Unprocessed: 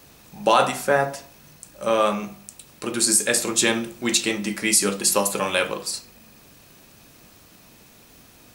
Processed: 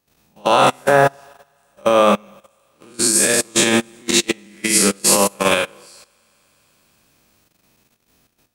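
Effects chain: spectral blur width 131 ms; on a send: thinning echo 124 ms, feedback 81%, high-pass 270 Hz, level -15 dB; on the sum: level held to a coarse grid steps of 13 dB; loudness maximiser +15.5 dB; upward expansion 2.5:1, over -25 dBFS

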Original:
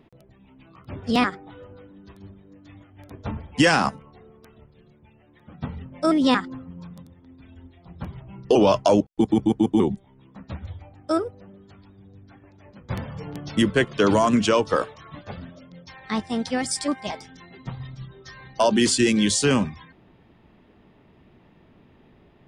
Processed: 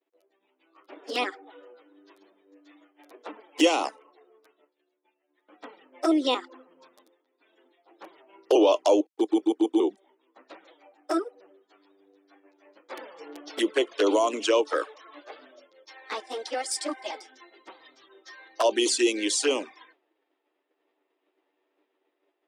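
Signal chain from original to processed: touch-sensitive flanger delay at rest 11 ms, full sweep at -15 dBFS; expander -48 dBFS; Chebyshev high-pass 310 Hz, order 5

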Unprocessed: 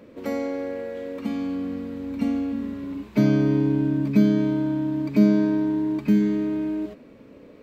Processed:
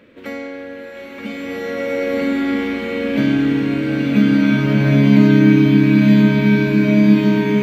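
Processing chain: high-order bell 2.3 kHz +9.5 dB; swelling reverb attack 1960 ms, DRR -10.5 dB; trim -2 dB

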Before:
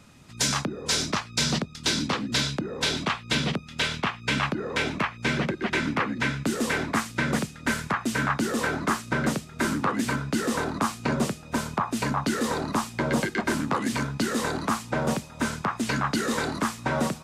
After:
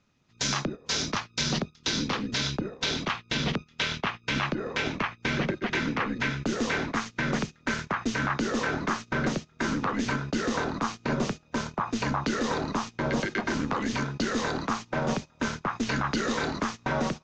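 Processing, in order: elliptic low-pass 6.5 kHz, stop band 50 dB; peaking EQ 60 Hz -4.5 dB 0.58 oct; gate -33 dBFS, range -16 dB; peak limiter -18 dBFS, peak gain reduction 5 dB; AM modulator 210 Hz, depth 35%; trim +2.5 dB

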